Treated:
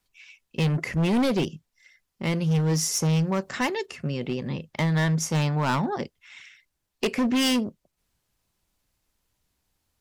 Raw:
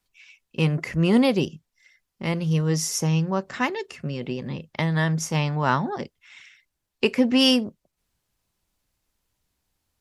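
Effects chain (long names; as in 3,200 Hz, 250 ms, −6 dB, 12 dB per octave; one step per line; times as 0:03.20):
0:03.09–0:03.86: high-shelf EQ 6,900 Hz +8 dB
hard clipping −20.5 dBFS, distortion −9 dB
level +1 dB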